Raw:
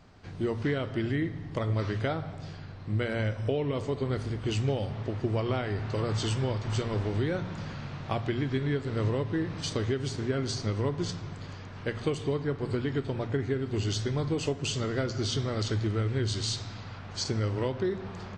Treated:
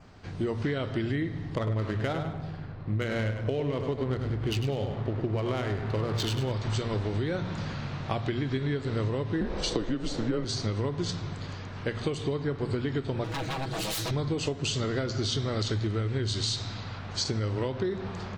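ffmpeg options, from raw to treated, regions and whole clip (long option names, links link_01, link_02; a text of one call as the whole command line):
ffmpeg -i in.wav -filter_complex "[0:a]asettb=1/sr,asplit=3[link_01][link_02][link_03];[link_01]atrim=end=1.554[link_04];[link_02]atrim=start=1.55:end=6.52,asetpts=PTS-STARTPTS,afade=type=in:duration=0.004:curve=qsin,afade=type=out:start_time=4.966:duration=0.004:curve=qsin,highshelf=frequency=4100:gain=8,adynamicsmooth=sensitivity=5:basefreq=1600,aecho=1:1:101|202|303:0.355|0.106|0.0319,atrim=end_sample=219177[link_05];[link_03]atrim=start=6.516[link_06];[link_04][link_05]acrossfade=duration=0.004:curve1=hsin:curve2=qsin[link_07];[link_07][link_06]acrossfade=duration=0.004:curve1=qsin:curve2=hsin,asettb=1/sr,asplit=3[link_08][link_09][link_10];[link_08]atrim=end=9.414[link_11];[link_09]atrim=start=9.41:end=10.45,asetpts=PTS-STARTPTS,afade=type=in:duration=0.004:curve=qsin,afade=type=out:start_time=1.036:duration=0.004:curve=qsin,equalizer=frequency=600:width=1.5:gain=14,afreqshift=-120[link_12];[link_10]atrim=start=10.446[link_13];[link_11][link_12]acrossfade=duration=0.004:curve1=hsin:curve2=qsin[link_14];[link_14][link_13]acrossfade=duration=0.004:curve1=qsin:curve2=hsin,asettb=1/sr,asplit=3[link_15][link_16][link_17];[link_15]atrim=end=13.244[link_18];[link_16]atrim=start=13.24:end=14.11,asetpts=PTS-STARTPTS,afade=type=in:duration=0.004:curve=qsin,afade=type=out:start_time=0.866:duration=0.004:curve=qsin,aemphasis=mode=production:type=cd,aeval=exprs='0.0237*(abs(mod(val(0)/0.0237+3,4)-2)-1)':channel_layout=same,aecho=1:1:6.2:0.72,atrim=end_sample=38367[link_19];[link_17]atrim=start=14.106[link_20];[link_18][link_19]acrossfade=duration=0.004:curve1=hsin:curve2=qsin[link_21];[link_21][link_20]acrossfade=duration=0.004:curve1=qsin:curve2=hsin,adynamicequalizer=threshold=0.002:dfrequency=3900:dqfactor=4.2:tfrequency=3900:tqfactor=4.2:attack=5:release=100:ratio=0.375:range=2.5:mode=boostabove:tftype=bell,acompressor=threshold=-29dB:ratio=6,volume=3.5dB" out.wav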